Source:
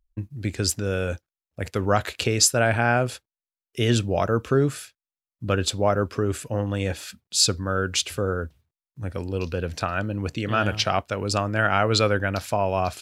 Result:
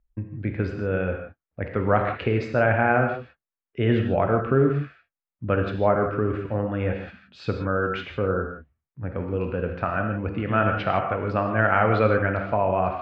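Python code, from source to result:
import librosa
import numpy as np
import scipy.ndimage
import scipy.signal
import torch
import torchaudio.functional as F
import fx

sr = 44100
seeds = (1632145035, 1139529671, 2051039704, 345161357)

y = scipy.signal.sosfilt(scipy.signal.butter(4, 2200.0, 'lowpass', fs=sr, output='sos'), x)
y = fx.rev_gated(y, sr, seeds[0], gate_ms=190, shape='flat', drr_db=3.5)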